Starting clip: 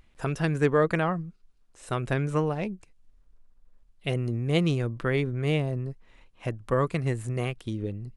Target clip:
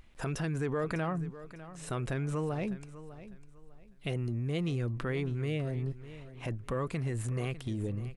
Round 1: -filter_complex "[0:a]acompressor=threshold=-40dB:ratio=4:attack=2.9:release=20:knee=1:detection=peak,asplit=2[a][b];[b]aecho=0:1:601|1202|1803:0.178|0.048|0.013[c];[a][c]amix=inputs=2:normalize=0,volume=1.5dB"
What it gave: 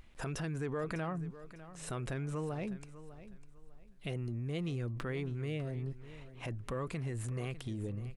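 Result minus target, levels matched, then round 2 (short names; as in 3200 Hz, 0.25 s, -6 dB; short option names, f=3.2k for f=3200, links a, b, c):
compressor: peak gain reduction +4.5 dB
-filter_complex "[0:a]acompressor=threshold=-34dB:ratio=4:attack=2.9:release=20:knee=1:detection=peak,asplit=2[a][b];[b]aecho=0:1:601|1202|1803:0.178|0.048|0.013[c];[a][c]amix=inputs=2:normalize=0,volume=1.5dB"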